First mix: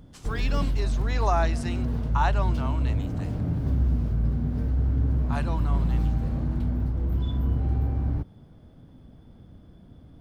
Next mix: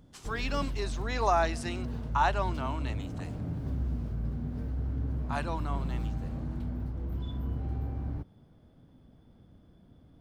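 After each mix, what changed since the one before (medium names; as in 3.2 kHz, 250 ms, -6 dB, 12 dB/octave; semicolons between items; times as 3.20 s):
background -6.0 dB; master: add bass shelf 140 Hz -4 dB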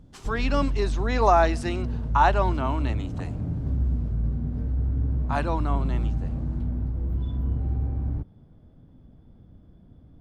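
speech +6.5 dB; master: add tilt EQ -2 dB/octave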